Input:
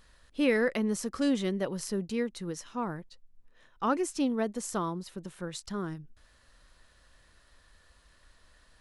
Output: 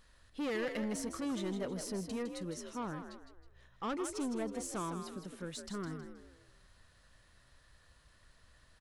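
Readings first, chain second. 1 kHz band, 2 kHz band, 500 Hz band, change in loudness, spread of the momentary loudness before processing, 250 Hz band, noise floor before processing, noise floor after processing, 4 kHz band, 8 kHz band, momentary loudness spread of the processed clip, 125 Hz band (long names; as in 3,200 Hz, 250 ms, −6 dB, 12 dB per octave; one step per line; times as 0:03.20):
−7.0 dB, −9.0 dB, −8.0 dB, −7.5 dB, 12 LU, −7.5 dB, −63 dBFS, −66 dBFS, −5.5 dB, −4.5 dB, 10 LU, −6.0 dB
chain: soft clipping −29 dBFS, distortion −9 dB
echo with shifted repeats 159 ms, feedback 36%, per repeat +58 Hz, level −8 dB
level −4 dB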